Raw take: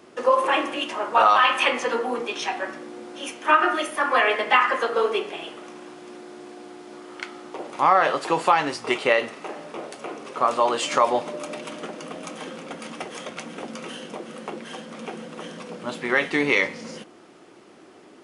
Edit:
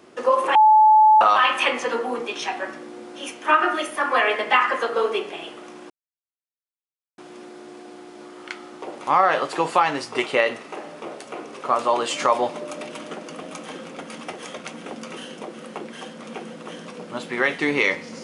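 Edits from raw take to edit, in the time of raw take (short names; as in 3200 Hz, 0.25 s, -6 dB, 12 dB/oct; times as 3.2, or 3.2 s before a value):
0.55–1.21 bleep 863 Hz -9.5 dBFS
5.9 insert silence 1.28 s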